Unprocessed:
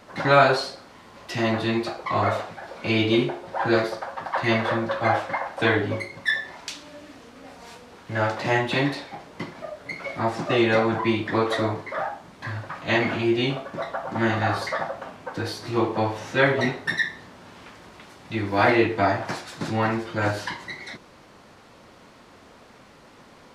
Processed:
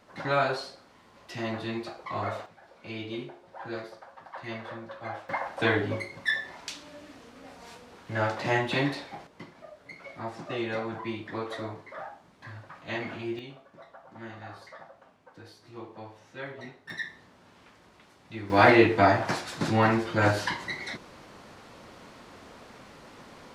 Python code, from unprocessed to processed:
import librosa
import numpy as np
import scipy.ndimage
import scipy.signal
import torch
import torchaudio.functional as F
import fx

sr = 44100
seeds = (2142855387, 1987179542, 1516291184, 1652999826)

y = fx.gain(x, sr, db=fx.steps((0.0, -9.5), (2.46, -16.0), (5.29, -4.0), (9.27, -12.0), (13.39, -20.0), (16.9, -11.0), (18.5, 1.0)))